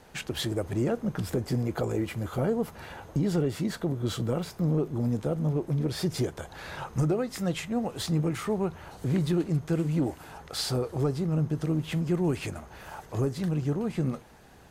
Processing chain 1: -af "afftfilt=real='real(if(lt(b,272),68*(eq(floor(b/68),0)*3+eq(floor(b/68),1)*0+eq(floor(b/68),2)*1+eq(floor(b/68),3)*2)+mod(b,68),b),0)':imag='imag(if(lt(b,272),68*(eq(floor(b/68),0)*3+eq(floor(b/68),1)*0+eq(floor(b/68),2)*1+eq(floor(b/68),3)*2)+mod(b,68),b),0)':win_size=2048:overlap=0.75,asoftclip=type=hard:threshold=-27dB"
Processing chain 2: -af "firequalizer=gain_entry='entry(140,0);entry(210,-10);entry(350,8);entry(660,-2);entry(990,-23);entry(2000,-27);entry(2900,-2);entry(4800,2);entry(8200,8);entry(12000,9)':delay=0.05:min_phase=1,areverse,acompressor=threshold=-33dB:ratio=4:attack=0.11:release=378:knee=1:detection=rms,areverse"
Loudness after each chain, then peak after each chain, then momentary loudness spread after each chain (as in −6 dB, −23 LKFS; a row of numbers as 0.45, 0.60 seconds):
−30.0, −39.0 LKFS; −27.0, −27.5 dBFS; 7, 7 LU